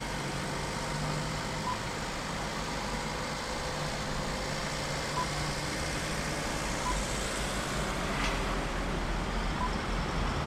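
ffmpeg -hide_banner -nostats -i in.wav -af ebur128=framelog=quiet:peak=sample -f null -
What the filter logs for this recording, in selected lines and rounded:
Integrated loudness:
  I:         -33.1 LUFS
  Threshold: -43.1 LUFS
Loudness range:
  LRA:         1.8 LU
  Threshold: -53.1 LUFS
  LRA low:   -34.1 LUFS
  LRA high:  -32.3 LUFS
Sample peak:
  Peak:      -17.9 dBFS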